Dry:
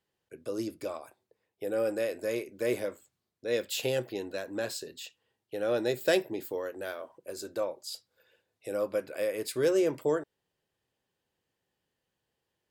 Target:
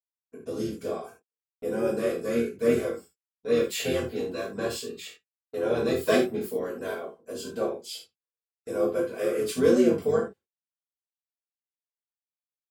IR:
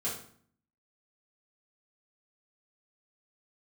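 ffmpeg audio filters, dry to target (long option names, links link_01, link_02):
-filter_complex "[0:a]agate=range=-47dB:threshold=-50dB:ratio=16:detection=peak,asplit=2[link_01][link_02];[link_02]asetrate=29433,aresample=44100,atempo=1.49831,volume=-4dB[link_03];[link_01][link_03]amix=inputs=2:normalize=0[link_04];[1:a]atrim=start_sample=2205,atrim=end_sample=4410[link_05];[link_04][link_05]afir=irnorm=-1:irlink=0,volume=-2dB"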